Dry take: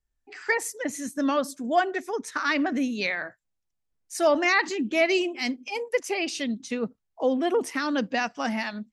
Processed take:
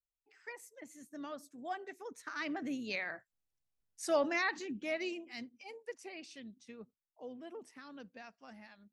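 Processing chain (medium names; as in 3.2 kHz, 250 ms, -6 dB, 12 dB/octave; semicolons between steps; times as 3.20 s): Doppler pass-by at 3.61 s, 13 m/s, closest 6.3 m; AM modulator 120 Hz, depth 10%; trim -5 dB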